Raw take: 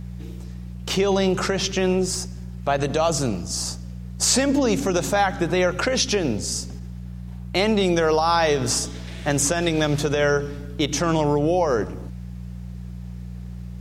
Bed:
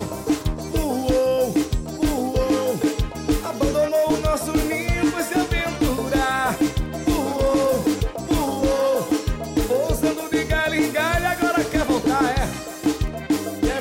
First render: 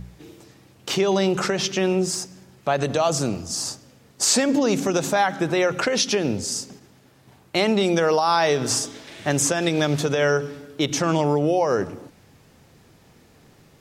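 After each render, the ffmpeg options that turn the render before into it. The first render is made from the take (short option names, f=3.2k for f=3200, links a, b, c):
-af "bandreject=f=60:t=h:w=4,bandreject=f=120:t=h:w=4,bandreject=f=180:t=h:w=4"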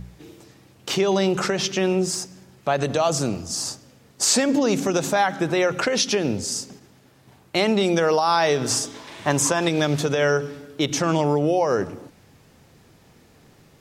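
-filter_complex "[0:a]asettb=1/sr,asplit=3[a][b][c];[a]atrim=end=8.944[d];[b]atrim=start=8.94:end=9.68,asetpts=PTS-STARTPTS,afade=t=in:d=0.004:c=qsin,afade=t=out:st=0.736:d=0.004:c=qsin,equalizer=f=1k:t=o:w=0.41:g=12.5[e];[c]atrim=start=9.676[f];[d][e]acrossfade=d=0.004:c1=hsin:c2=qsin[g];[g][f]acrossfade=d=0.004:c1=qsin:c2=hsin"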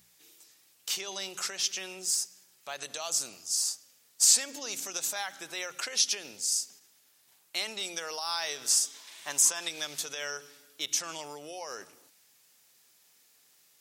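-af "aderivative"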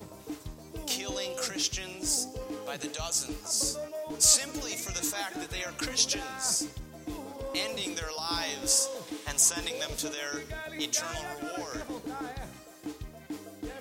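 -filter_complex "[1:a]volume=-18.5dB[a];[0:a][a]amix=inputs=2:normalize=0"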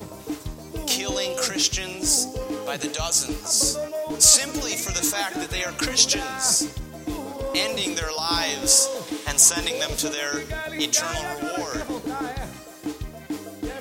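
-af "volume=8.5dB,alimiter=limit=-2dB:level=0:latency=1"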